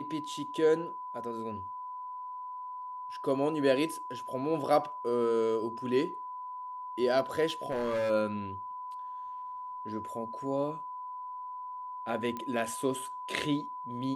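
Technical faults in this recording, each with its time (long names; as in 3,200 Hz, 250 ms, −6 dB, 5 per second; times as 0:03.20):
whistle 1,000 Hz −38 dBFS
0:07.47–0:08.11: clipping −27.5 dBFS
0:12.37: click −24 dBFS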